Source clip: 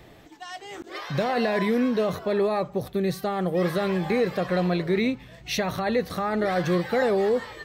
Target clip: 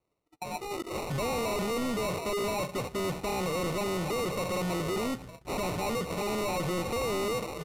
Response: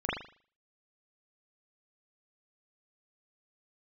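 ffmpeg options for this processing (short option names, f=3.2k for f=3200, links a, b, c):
-af "agate=range=-35dB:threshold=-44dB:ratio=16:detection=peak,equalizer=f=510:w=1.3:g=7.5,acrusher=samples=27:mix=1:aa=0.000001,volume=29.5dB,asoftclip=hard,volume=-29.5dB,aresample=32000,aresample=44100"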